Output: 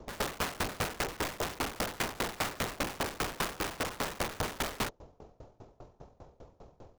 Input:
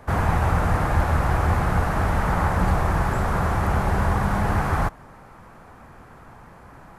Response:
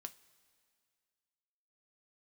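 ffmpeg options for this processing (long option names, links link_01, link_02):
-filter_complex "[0:a]acrossover=split=350|3000[link_01][link_02][link_03];[link_01]acompressor=threshold=-28dB:ratio=6[link_04];[link_04][link_02][link_03]amix=inputs=3:normalize=0,asetrate=24046,aresample=44100,atempo=1.83401,aeval=exprs='(mod(13.3*val(0)+1,2)-1)/13.3':channel_layout=same,aeval=exprs='val(0)*pow(10,-25*if(lt(mod(5*n/s,1),2*abs(5)/1000),1-mod(5*n/s,1)/(2*abs(5)/1000),(mod(5*n/s,1)-2*abs(5)/1000)/(1-2*abs(5)/1000))/20)':channel_layout=same"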